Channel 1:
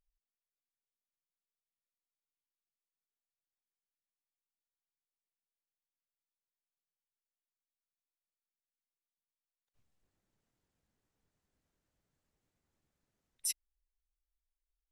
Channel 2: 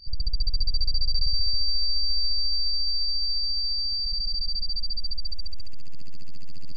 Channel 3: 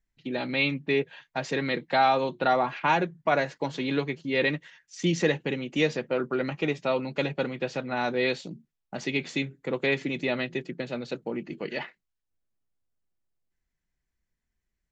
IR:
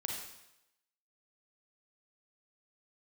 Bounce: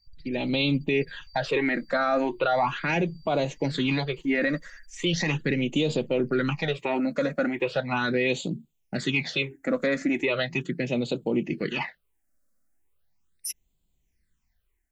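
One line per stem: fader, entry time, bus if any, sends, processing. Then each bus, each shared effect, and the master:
+0.5 dB, 0.00 s, no send, none
-19.0 dB, 0.00 s, no send, reverb removal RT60 2 s; compression, threshold -26 dBFS, peak gain reduction 7 dB
+1.0 dB, 0.00 s, no send, level rider gain up to 7.5 dB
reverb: none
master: treble shelf 6.5 kHz +4 dB; phase shifter stages 8, 0.38 Hz, lowest notch 110–1800 Hz; peak limiter -15.5 dBFS, peak gain reduction 10 dB

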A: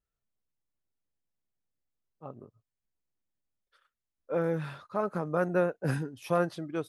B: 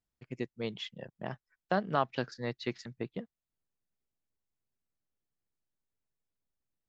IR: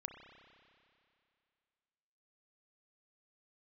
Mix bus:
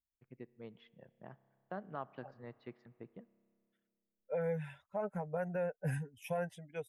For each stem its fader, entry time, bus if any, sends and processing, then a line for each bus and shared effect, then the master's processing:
+0.5 dB, 0.00 s, no send, expander on every frequency bin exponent 1.5; static phaser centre 1.2 kHz, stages 6
-15.0 dB, 0.00 s, send -9.5 dB, low-pass 1.8 kHz 12 dB/octave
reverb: on, RT60 2.5 s, pre-delay 30 ms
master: peak limiter -28 dBFS, peak gain reduction 8 dB

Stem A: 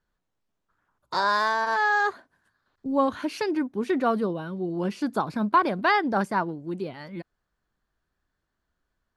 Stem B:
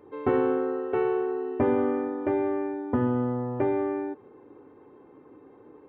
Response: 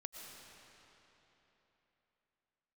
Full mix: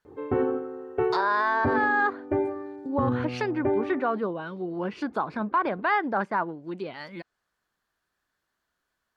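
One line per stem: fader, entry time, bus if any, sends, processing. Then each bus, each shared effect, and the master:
+3.0 dB, 0.00 s, no send, low-pass that closes with the level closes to 2 kHz, closed at -24.5 dBFS; tilt EQ +3.5 dB/octave
+2.5 dB, 0.05 s, no send, band-stop 1 kHz; reverb removal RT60 1.8 s; peaking EQ 64 Hz +8.5 dB 1.8 oct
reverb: none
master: treble shelf 3.3 kHz -10 dB; peak limiter -15.5 dBFS, peak gain reduction 9.5 dB

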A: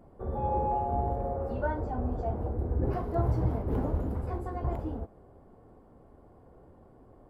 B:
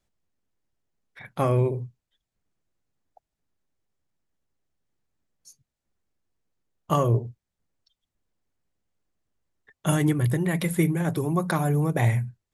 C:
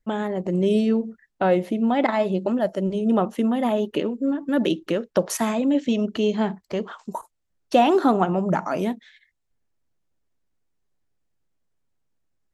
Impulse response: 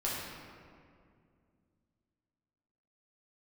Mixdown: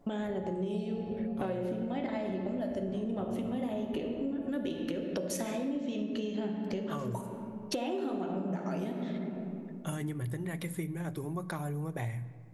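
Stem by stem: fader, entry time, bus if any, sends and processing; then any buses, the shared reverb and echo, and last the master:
-8.0 dB, 0.00 s, bus A, send -12 dB, reverb removal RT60 1.7 s; comb 7 ms
-11.0 dB, 0.00 s, no bus, send -21 dB, none
+3.0 dB, 0.00 s, bus A, send -12.5 dB, peaking EQ 1.1 kHz -9 dB 0.99 oct
bus A: 0.0 dB, saturation -7.5 dBFS, distortion -25 dB; compression, threshold -28 dBFS, peak gain reduction 14 dB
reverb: on, RT60 2.3 s, pre-delay 6 ms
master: compression, threshold -32 dBFS, peak gain reduction 15 dB

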